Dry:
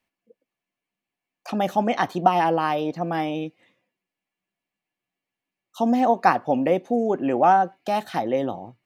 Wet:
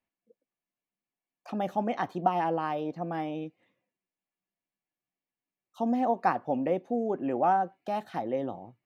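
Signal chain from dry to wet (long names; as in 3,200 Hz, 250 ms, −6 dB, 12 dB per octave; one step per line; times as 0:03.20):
high-shelf EQ 2,400 Hz −9 dB
level −7 dB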